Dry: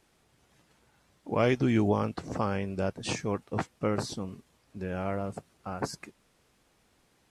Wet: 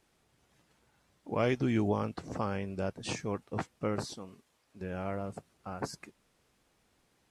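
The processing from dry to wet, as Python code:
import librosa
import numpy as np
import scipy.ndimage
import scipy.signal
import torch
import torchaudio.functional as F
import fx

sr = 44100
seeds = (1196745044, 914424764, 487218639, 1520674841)

y = fx.low_shelf(x, sr, hz=250.0, db=-11.5, at=(4.04, 4.81))
y = F.gain(torch.from_numpy(y), -4.0).numpy()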